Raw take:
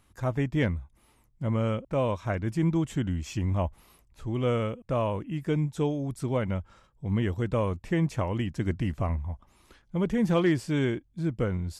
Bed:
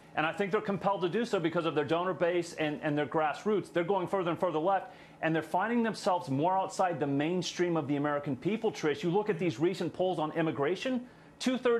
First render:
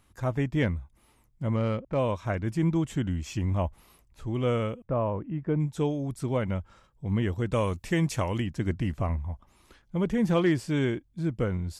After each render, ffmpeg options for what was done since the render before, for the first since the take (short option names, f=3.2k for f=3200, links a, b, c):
-filter_complex "[0:a]asettb=1/sr,asplit=3[a][b][c];[a]atrim=end=1.564[d];[b]atrim=start=1.56:end=1.99,asetpts=PTS-STARTPTS,afade=t=in:d=0.004:c=qsin,afade=t=out:st=0.426:d=0.004:c=qsin,adynamicsmooth=sensitivity=8:basefreq=2.5k[e];[c]atrim=start=1.986[f];[d][e]acrossfade=d=0.004:c1=hsin:c2=qsin[g];[g][f]acrossfade=d=0.004:c1=qsin:c2=hsin,asplit=3[h][i][j];[h]afade=t=out:st=4.83:d=0.02[k];[i]lowpass=1.4k,afade=t=in:st=4.83:d=0.02,afade=t=out:st=5.59:d=0.02[l];[j]afade=t=in:st=5.59:d=0.02[m];[k][l][m]amix=inputs=3:normalize=0,asettb=1/sr,asplit=3[n][o][p];[n]atrim=end=7.524[q];[o]atrim=start=7.52:end=8.4,asetpts=PTS-STARTPTS,afade=t=in:d=0.004:c=qsin,afade=t=out:st=0.876:d=0.004:c=qsin,highshelf=f=2.8k:g=11.5[r];[p]atrim=start=8.396[s];[q][r]acrossfade=d=0.004:c1=hsin:c2=qsin[t];[t][s]acrossfade=d=0.004:c1=qsin:c2=hsin"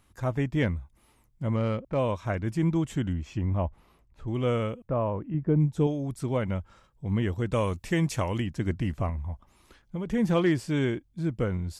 -filter_complex "[0:a]asettb=1/sr,asplit=3[a][b][c];[a]atrim=end=3.134[d];[b]atrim=start=3.13:end=4.28,asetpts=PTS-STARTPTS,afade=t=in:d=0.004:c=qsin,afade=t=out:st=1.146:d=0.004:c=qsin,lowpass=f=1.7k:p=1[e];[c]atrim=start=4.276[f];[d][e]acrossfade=d=0.004:c1=hsin:c2=qsin[g];[g][f]acrossfade=d=0.004:c1=qsin:c2=hsin,asettb=1/sr,asplit=3[h][i][j];[h]atrim=end=5.344[k];[i]atrim=start=5.34:end=5.87,asetpts=PTS-STARTPTS,afade=t=in:d=0.004:c=qsin,afade=t=out:st=0.526:d=0.004:c=qsin,tiltshelf=f=660:g=5[l];[j]atrim=start=5.866[m];[k][l]acrossfade=d=0.004:c1=hsin:c2=qsin[n];[n][m]acrossfade=d=0.004:c1=qsin:c2=hsin,asettb=1/sr,asplit=3[o][p][q];[o]atrim=end=9.094[r];[p]atrim=start=9.09:end=10.1,asetpts=PTS-STARTPTS,afade=t=in:d=0.004:c=qsin,afade=t=out:st=1.006:d=0.004:c=qsin,acompressor=threshold=-28dB:ratio=6:attack=3.2:release=140:knee=1:detection=peak[s];[q]atrim=start=10.096[t];[r][s]acrossfade=d=0.004:c1=hsin:c2=qsin[u];[u][t]acrossfade=d=0.004:c1=qsin:c2=hsin"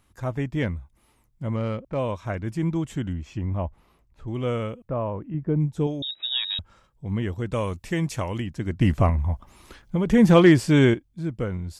-filter_complex "[0:a]asettb=1/sr,asplit=3[a][b][c];[a]atrim=end=6.024[d];[b]atrim=start=6.02:end=6.59,asetpts=PTS-STARTPTS,afade=t=in:d=0.004:c=qsin,afade=t=out:st=0.566:d=0.004:c=qsin,lowpass=f=3.3k:t=q:w=0.5098,lowpass=f=3.3k:t=q:w=0.6013,lowpass=f=3.3k:t=q:w=0.9,lowpass=f=3.3k:t=q:w=2.563,afreqshift=-3900[e];[c]atrim=start=6.586[f];[d][e]acrossfade=d=0.004:c1=hsin:c2=qsin[g];[g][f]acrossfade=d=0.004:c1=qsin:c2=hsin,asplit=3[h][i][j];[h]atrim=end=8.812[k];[i]atrim=start=8.808:end=10.942,asetpts=PTS-STARTPTS,volume=9.5dB[l];[j]atrim=start=10.938[m];[k][l]acrossfade=d=0.004:c1=hsin:c2=hsin[n];[n][m]acrossfade=d=0.004:c1=hsin:c2=hsin"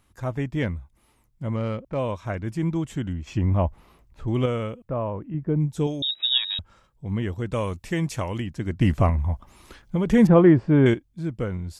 -filter_complex "[0:a]asettb=1/sr,asplit=3[a][b][c];[a]atrim=end=3.274[d];[b]atrim=start=3.27:end=4.46,asetpts=PTS-STARTPTS,afade=t=in:d=0.004:c=qsin,afade=t=out:st=1.186:d=0.004:c=qsin,acontrast=51[e];[c]atrim=start=4.456[f];[d][e]acrossfade=d=0.004:c1=hsin:c2=qsin[g];[g][f]acrossfade=d=0.004:c1=qsin:c2=hsin,asettb=1/sr,asplit=3[h][i][j];[h]atrim=end=5.704[k];[i]atrim=start=5.7:end=6.38,asetpts=PTS-STARTPTS,afade=t=in:d=0.004:c=qsin,afade=t=out:st=0.676:d=0.004:c=qsin,highshelf=f=2.9k:g=9[l];[j]atrim=start=6.376[m];[k][l]acrossfade=d=0.004:c1=hsin:c2=qsin[n];[n][m]acrossfade=d=0.004:c1=qsin:c2=hsin,asettb=1/sr,asplit=3[o][p][q];[o]atrim=end=10.274[r];[p]atrim=start=10.27:end=10.86,asetpts=PTS-STARTPTS,afade=t=in:d=0.004:c=qsin,afade=t=out:st=0.586:d=0.004:c=qsin,lowpass=1.2k[s];[q]atrim=start=10.856[t];[r][s]acrossfade=d=0.004:c1=hsin:c2=qsin[u];[u][t]acrossfade=d=0.004:c1=qsin:c2=hsin"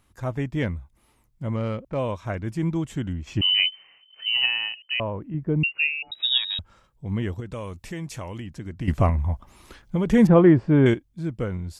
-filter_complex "[0:a]asettb=1/sr,asplit=3[a][b][c];[a]atrim=end=3.414[d];[b]atrim=start=3.41:end=5,asetpts=PTS-STARTPTS,afade=t=in:d=0.004:c=qsin,afade=t=out:st=1.586:d=0.004:c=qsin,lowpass=f=2.6k:t=q:w=0.5098,lowpass=f=2.6k:t=q:w=0.6013,lowpass=f=2.6k:t=q:w=0.9,lowpass=f=2.6k:t=q:w=2.563,afreqshift=-3100[e];[c]atrim=start=4.996[f];[d][e]acrossfade=d=0.004:c1=hsin:c2=qsin[g];[g][f]acrossfade=d=0.004:c1=qsin:c2=hsin,asettb=1/sr,asplit=3[h][i][j];[h]atrim=end=5.634[k];[i]atrim=start=5.63:end=6.12,asetpts=PTS-STARTPTS,afade=t=in:d=0.004:c=qsin,afade=t=out:st=0.486:d=0.004:c=qsin,lowpass=f=2.5k:t=q:w=0.5098,lowpass=f=2.5k:t=q:w=0.6013,lowpass=f=2.5k:t=q:w=0.9,lowpass=f=2.5k:t=q:w=2.563,afreqshift=-2900[l];[j]atrim=start=6.116[m];[k][l]acrossfade=d=0.004:c1=hsin:c2=qsin[n];[n][m]acrossfade=d=0.004:c1=qsin:c2=hsin,asettb=1/sr,asplit=3[o][p][q];[o]atrim=end=7.404[r];[p]atrim=start=7.4:end=8.88,asetpts=PTS-STARTPTS,afade=t=in:d=0.004:c=qsin,afade=t=out:st=1.476:d=0.004:c=qsin,acompressor=threshold=-35dB:ratio=2:attack=3.2:release=140:knee=1:detection=peak[s];[q]atrim=start=8.876[t];[r][s]acrossfade=d=0.004:c1=hsin:c2=qsin[u];[u][t]acrossfade=d=0.004:c1=qsin:c2=hsin"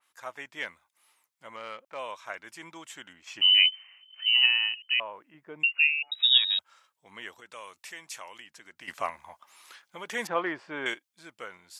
-af "highpass=1.1k,adynamicequalizer=threshold=0.0141:dfrequency=3000:dqfactor=0.7:tfrequency=3000:tqfactor=0.7:attack=5:release=100:ratio=0.375:range=1.5:mode=boostabove:tftype=highshelf"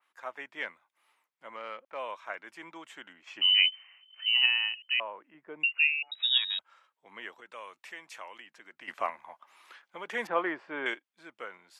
-filter_complex "[0:a]highpass=92,acrossover=split=200 3200:gain=0.2 1 0.224[a][b][c];[a][b][c]amix=inputs=3:normalize=0"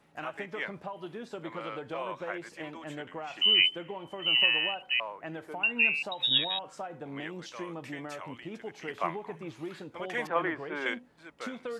-filter_complex "[1:a]volume=-10.5dB[a];[0:a][a]amix=inputs=2:normalize=0"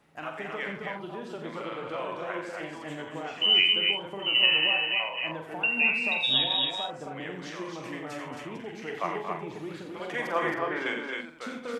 -filter_complex "[0:a]asplit=2[a][b];[b]adelay=45,volume=-7.5dB[c];[a][c]amix=inputs=2:normalize=0,aecho=1:1:87.46|227.4|268.2:0.398|0.282|0.631"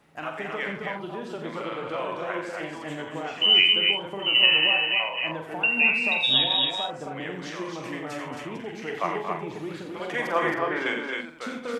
-af "volume=3.5dB"